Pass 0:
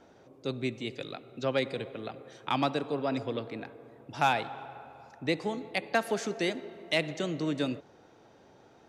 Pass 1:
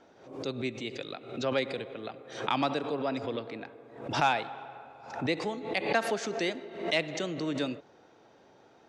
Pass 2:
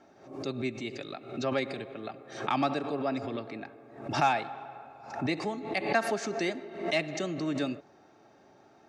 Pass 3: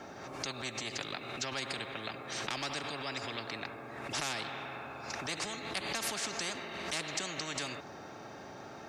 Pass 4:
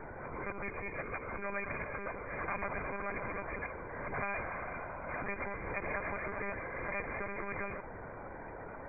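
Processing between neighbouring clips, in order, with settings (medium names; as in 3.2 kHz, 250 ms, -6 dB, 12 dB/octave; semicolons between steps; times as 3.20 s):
low-pass 7.1 kHz 12 dB/octave; bass shelf 160 Hz -8.5 dB; swell ahead of each attack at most 89 dB/s
peaking EQ 3.3 kHz -7 dB 0.34 oct; comb of notches 490 Hz; trim +1.5 dB
spectrum-flattening compressor 4:1; trim -2.5 dB
brick-wall FIR low-pass 2.5 kHz; monotone LPC vocoder at 8 kHz 200 Hz; trim +2 dB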